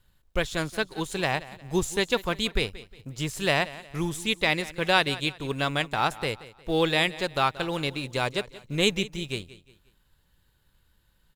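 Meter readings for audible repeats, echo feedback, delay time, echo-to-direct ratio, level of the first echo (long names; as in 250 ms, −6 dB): 2, 36%, 179 ms, −17.0 dB, −17.5 dB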